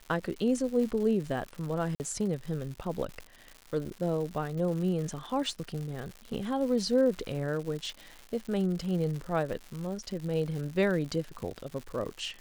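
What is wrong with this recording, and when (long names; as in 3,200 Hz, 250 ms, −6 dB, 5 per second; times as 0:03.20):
surface crackle 210 per second −37 dBFS
0:01.95–0:02.00: drop-out 49 ms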